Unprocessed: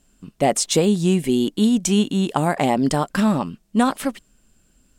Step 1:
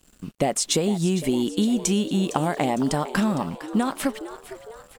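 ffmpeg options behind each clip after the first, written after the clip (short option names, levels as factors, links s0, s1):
-filter_complex "[0:a]acompressor=threshold=0.0708:ratio=6,acrusher=bits=8:mix=0:aa=0.5,asplit=6[s0][s1][s2][s3][s4][s5];[s1]adelay=457,afreqshift=110,volume=0.188[s6];[s2]adelay=914,afreqshift=220,volume=0.0966[s7];[s3]adelay=1371,afreqshift=330,volume=0.049[s8];[s4]adelay=1828,afreqshift=440,volume=0.0251[s9];[s5]adelay=2285,afreqshift=550,volume=0.0127[s10];[s0][s6][s7][s8][s9][s10]amix=inputs=6:normalize=0,volume=1.5"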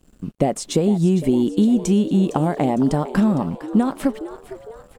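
-af "tiltshelf=f=970:g=6.5"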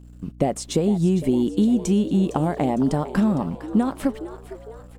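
-af "aeval=exprs='val(0)+0.01*(sin(2*PI*60*n/s)+sin(2*PI*2*60*n/s)/2+sin(2*PI*3*60*n/s)/3+sin(2*PI*4*60*n/s)/4+sin(2*PI*5*60*n/s)/5)':c=same,volume=0.75"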